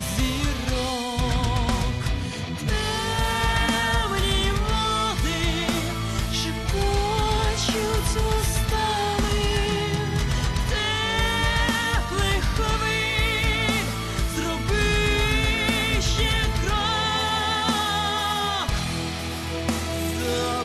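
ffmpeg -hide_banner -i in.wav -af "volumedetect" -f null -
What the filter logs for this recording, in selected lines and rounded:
mean_volume: -23.3 dB
max_volume: -12.8 dB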